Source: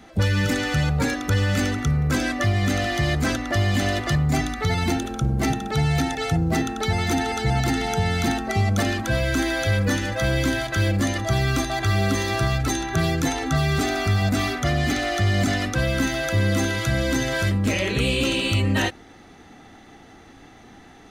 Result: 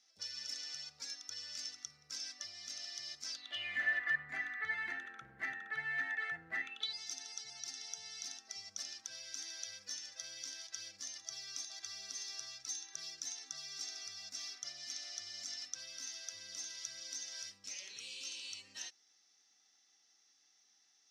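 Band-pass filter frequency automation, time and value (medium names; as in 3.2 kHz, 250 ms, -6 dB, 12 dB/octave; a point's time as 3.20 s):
band-pass filter, Q 9.8
3.30 s 5.4 kHz
3.80 s 1.8 kHz
6.58 s 1.8 kHz
7.00 s 5.5 kHz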